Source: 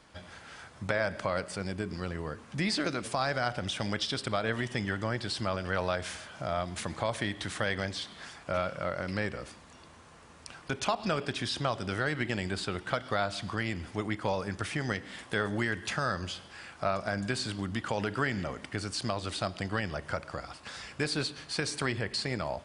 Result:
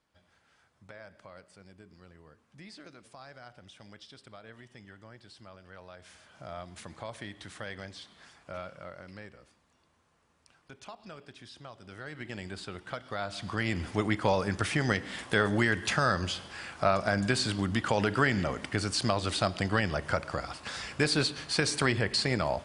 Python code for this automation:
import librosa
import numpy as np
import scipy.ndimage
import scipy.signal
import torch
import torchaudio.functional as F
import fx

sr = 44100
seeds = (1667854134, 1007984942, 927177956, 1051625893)

y = fx.gain(x, sr, db=fx.line((5.91, -19.0), (6.37, -9.5), (8.65, -9.5), (9.48, -16.5), (11.76, -16.5), (12.38, -7.0), (13.09, -7.0), (13.79, 4.5)))